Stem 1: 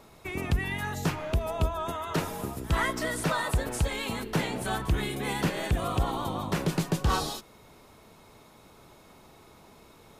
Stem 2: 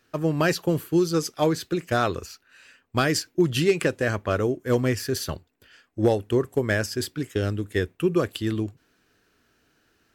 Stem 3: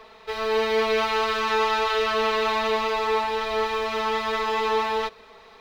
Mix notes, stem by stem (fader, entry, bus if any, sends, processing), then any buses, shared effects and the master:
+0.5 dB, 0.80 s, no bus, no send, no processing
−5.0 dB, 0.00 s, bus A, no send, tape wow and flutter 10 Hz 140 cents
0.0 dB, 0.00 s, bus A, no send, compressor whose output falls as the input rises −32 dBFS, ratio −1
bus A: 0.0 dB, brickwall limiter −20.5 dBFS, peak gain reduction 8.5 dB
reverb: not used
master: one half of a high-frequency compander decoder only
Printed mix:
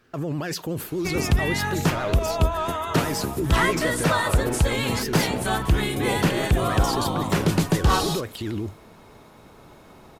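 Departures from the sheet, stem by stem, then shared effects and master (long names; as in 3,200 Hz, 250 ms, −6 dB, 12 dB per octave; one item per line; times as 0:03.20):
stem 1 +0.5 dB → +6.5 dB
stem 2 −5.0 dB → +7.0 dB
stem 3: muted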